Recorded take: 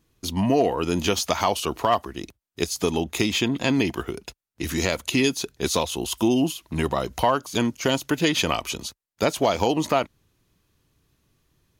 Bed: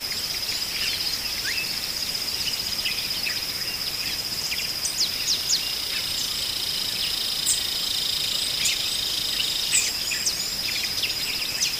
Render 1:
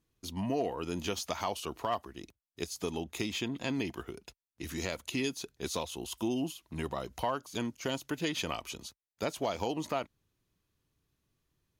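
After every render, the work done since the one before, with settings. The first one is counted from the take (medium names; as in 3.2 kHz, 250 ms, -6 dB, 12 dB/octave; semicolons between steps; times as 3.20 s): trim -12 dB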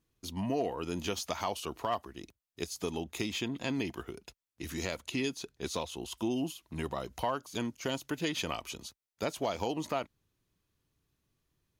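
4.98–6.34 s: treble shelf 9.7 kHz -7.5 dB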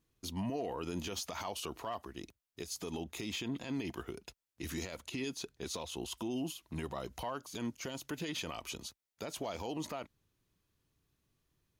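peak limiter -29 dBFS, peak gain reduction 11 dB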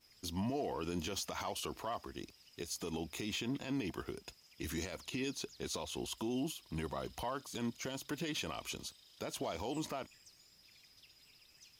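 add bed -37 dB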